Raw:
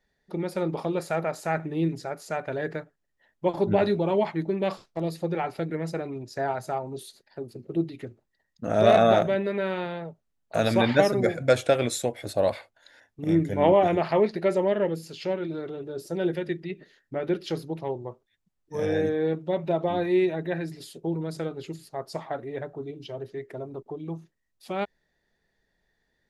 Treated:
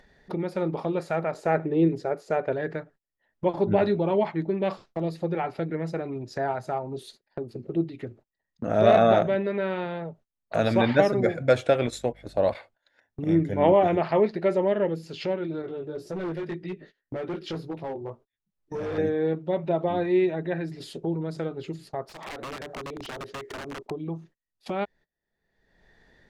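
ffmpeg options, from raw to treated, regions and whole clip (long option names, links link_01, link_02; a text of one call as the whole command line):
ffmpeg -i in.wav -filter_complex "[0:a]asettb=1/sr,asplit=3[link_01][link_02][link_03];[link_01]atrim=end=1.344[link_04];[link_02]atrim=start=1.34:end=2.53,asetpts=PTS-STARTPTS,afade=type=in:duration=0.004:curve=qsin,afade=type=out:start_time=1.186:duration=0.004:curve=qsin,equalizer=frequency=440:width_type=o:width=0.95:gain=9.5,agate=range=-33dB:threshold=-42dB:ratio=3:release=100:detection=peak[link_05];[link_03]atrim=start=2.526[link_06];[link_04][link_05]acrossfade=duration=0.004:curve1=hsin:curve2=qsin[link_07];[link_07][link_06]acrossfade=duration=0.004:curve1=qsin:curve2=hsin,asettb=1/sr,asplit=3[link_08][link_09][link_10];[link_08]atrim=end=11.874[link_11];[link_09]atrim=start=11.87:end=12.55,asetpts=PTS-STARTPTS,afade=type=in:duration=0.004:curve=qsin,afade=type=out:start_time=0.676:duration=0.004:curve=qsin,agate=range=-10dB:threshold=-33dB:ratio=16:release=100:detection=peak,aeval=exprs='val(0)+0.002*(sin(2*PI*50*n/s)+sin(2*PI*2*50*n/s)/2+sin(2*PI*3*50*n/s)/3+sin(2*PI*4*50*n/s)/4+sin(2*PI*5*50*n/s)/5)':channel_layout=same[link_12];[link_10]atrim=start=12.546[link_13];[link_11][link_12]acrossfade=duration=0.004:curve1=hsin:curve2=qsin[link_14];[link_14][link_13]acrossfade=duration=0.004:curve1=qsin:curve2=hsin,asettb=1/sr,asplit=3[link_15][link_16][link_17];[link_15]atrim=end=15.624[link_18];[link_16]atrim=start=15.62:end=18.98,asetpts=PTS-STARTPTS,afade=type=in:duration=0.004:curve=qsin,afade=type=out:start_time=3.356:duration=0.004:curve=qsin,flanger=delay=16:depth=3.4:speed=1.9,asoftclip=type=hard:threshold=-30dB[link_19];[link_17]atrim=start=18.976[link_20];[link_18][link_19]acrossfade=duration=0.004:curve1=hsin:curve2=qsin[link_21];[link_21][link_20]acrossfade=duration=0.004:curve1=qsin:curve2=hsin,asettb=1/sr,asplit=3[link_22][link_23][link_24];[link_22]atrim=end=22.064[link_25];[link_23]atrim=start=22.06:end=23.91,asetpts=PTS-STARTPTS,afade=type=in:duration=0.004:curve=qsin,afade=type=out:start_time=1.846:duration=0.004:curve=qsin,bass=frequency=250:gain=-9,treble=frequency=4000:gain=4,acompressor=threshold=-39dB:ratio=12:attack=3.2:release=140:knee=1:detection=peak,aeval=exprs='(mod(89.1*val(0)+1,2)-1)/89.1':channel_layout=same[link_26];[link_24]atrim=start=23.906[link_27];[link_25][link_26]acrossfade=duration=0.004:curve1=hsin:curve2=qsin[link_28];[link_28][link_27]acrossfade=duration=0.004:curve1=qsin:curve2=hsin,aemphasis=mode=reproduction:type=50fm,agate=range=-25dB:threshold=-52dB:ratio=16:detection=peak,acompressor=mode=upward:threshold=-28dB:ratio=2.5" out.wav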